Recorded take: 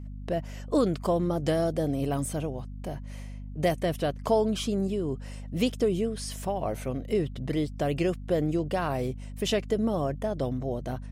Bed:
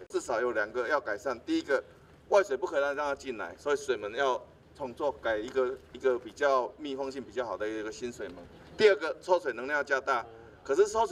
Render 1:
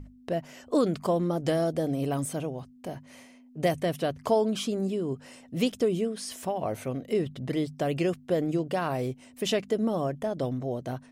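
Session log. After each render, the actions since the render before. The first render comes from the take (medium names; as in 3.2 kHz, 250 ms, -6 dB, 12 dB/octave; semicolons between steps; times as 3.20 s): hum notches 50/100/150/200 Hz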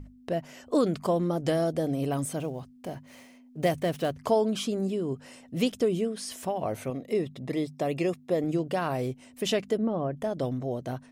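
2.39–4.15 s: dead-time distortion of 0.053 ms; 6.90–8.44 s: comb of notches 1.5 kHz; 9.77–10.17 s: distance through air 420 m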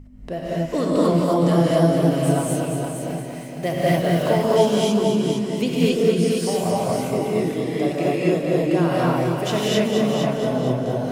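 on a send: multi-head delay 232 ms, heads first and second, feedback 42%, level -8 dB; on the sum: gated-style reverb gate 290 ms rising, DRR -7 dB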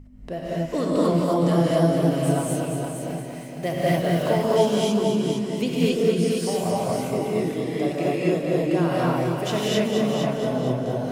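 trim -2.5 dB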